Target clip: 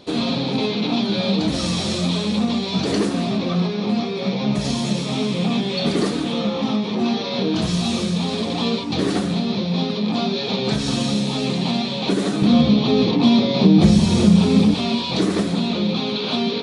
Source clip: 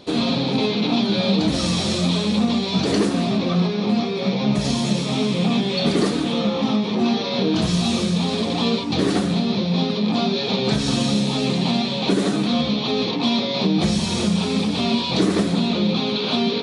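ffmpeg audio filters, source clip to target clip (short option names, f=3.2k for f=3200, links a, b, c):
-filter_complex "[0:a]asettb=1/sr,asplit=3[a][b][c];[a]atrim=end=12.424[d];[b]atrim=start=12.42:end=14.74,asetpts=PTS-STARTPTS,afade=t=in:d=0.004:c=qsin,afade=t=out:st=2.316:d=0.004:c=qsin,lowshelf=f=470:g=10[e];[c]atrim=start=14.736[f];[d][e]acrossfade=d=0.004:c1=hsin:c2=qsin[g];[g][f]acrossfade=d=0.004:c1=qsin:c2=hsin,volume=-1dB"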